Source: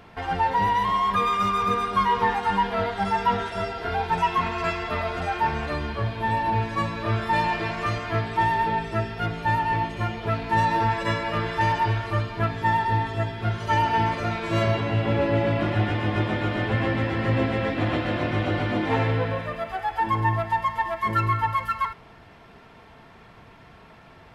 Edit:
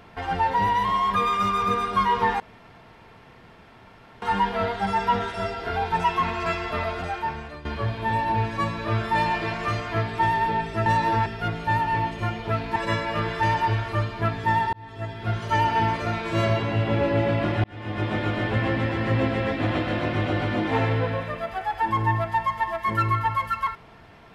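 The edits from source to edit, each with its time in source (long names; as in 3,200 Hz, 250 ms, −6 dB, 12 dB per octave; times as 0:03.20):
0:02.40: splice in room tone 1.82 s
0:05.03–0:05.83: fade out, to −15 dB
0:10.54–0:10.94: move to 0:09.04
0:12.91–0:13.53: fade in linear
0:15.82–0:16.34: fade in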